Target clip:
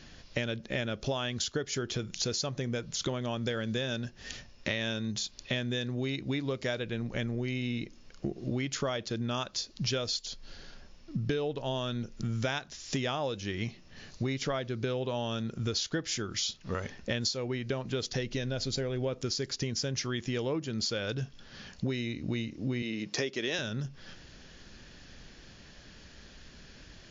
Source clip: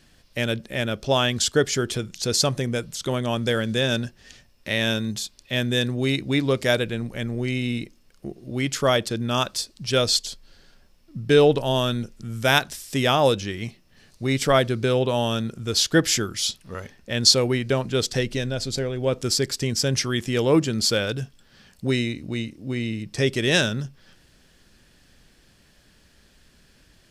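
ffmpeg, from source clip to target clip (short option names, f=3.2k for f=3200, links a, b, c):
-filter_complex "[0:a]asettb=1/sr,asplit=3[a][b][c];[a]atrim=end=22.824[d];[b]atrim=start=22.82:end=23.59,asetpts=PTS-STARTPTS,afade=t=in:d=0.004:c=qsin,afade=t=out:st=0.766:d=0.004:c=qsin,highpass=260[e];[c]atrim=start=23.586[f];[d][e]acrossfade=d=0.004:c1=hsin:c2=qsin[g];[g][f]acrossfade=d=0.004:c1=qsin:c2=hsin,acompressor=threshold=-34dB:ratio=16,volume=5.5dB" -ar 16000 -c:a libmp3lame -b:a 56k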